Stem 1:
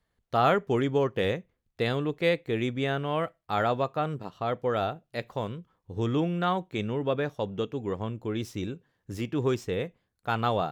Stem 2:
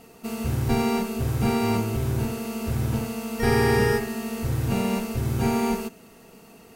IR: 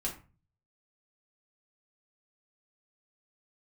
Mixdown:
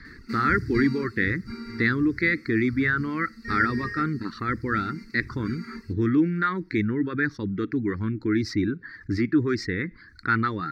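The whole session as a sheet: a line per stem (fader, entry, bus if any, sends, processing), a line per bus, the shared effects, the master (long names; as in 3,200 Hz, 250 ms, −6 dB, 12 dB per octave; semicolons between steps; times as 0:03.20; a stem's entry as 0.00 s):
+1.5 dB, 0.00 s, no send, high-shelf EQ 6,900 Hz −11.5 dB; envelope flattener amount 50%
+1.0 dB, 0.05 s, no send, automatic ducking −13 dB, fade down 1.45 s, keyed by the first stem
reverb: not used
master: reverb reduction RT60 0.72 s; drawn EQ curve 100 Hz 0 dB, 150 Hz −3 dB, 320 Hz +7 dB, 670 Hz −30 dB, 1,400 Hz +6 dB, 2,000 Hz +11 dB, 3,000 Hz −20 dB, 4,500 Hz +8 dB, 6,700 Hz −11 dB, 12,000 Hz −18 dB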